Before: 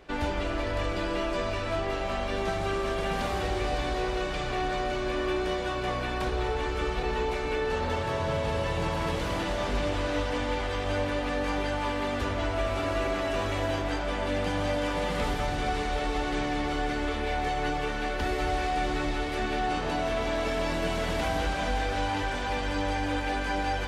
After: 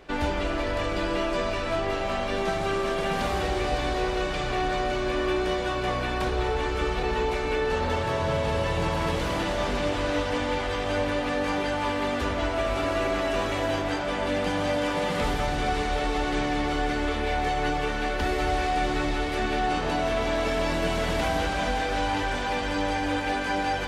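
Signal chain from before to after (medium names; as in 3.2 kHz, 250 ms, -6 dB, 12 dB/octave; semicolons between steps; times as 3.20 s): hum notches 50/100 Hz; trim +3 dB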